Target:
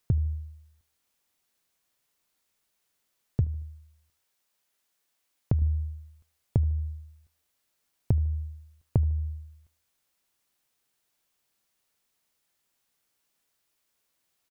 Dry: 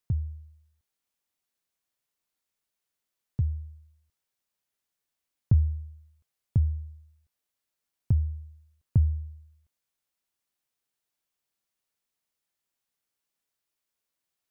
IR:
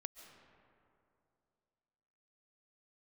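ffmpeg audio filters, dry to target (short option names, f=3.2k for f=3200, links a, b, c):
-filter_complex "[0:a]asettb=1/sr,asplit=3[a][b][c];[a]atrim=end=3.444[d];[b]atrim=start=3.44:end=5.62,asetpts=PTS-STARTPTS,afade=t=in:d=0.004:c=qsin,afade=t=out:st=2.176:d=0.004:c=qsin,lowshelf=f=220:g=-8[e];[c]atrim=start=5.616[f];[d][e]acrossfade=d=0.004:c1=hsin:c2=qsin[g];[g][f]acrossfade=d=0.004:c1=qsin:c2=hsin,acompressor=threshold=-30dB:ratio=6,aecho=1:1:76|152|228:0.0631|0.0284|0.0128,volume=8.5dB"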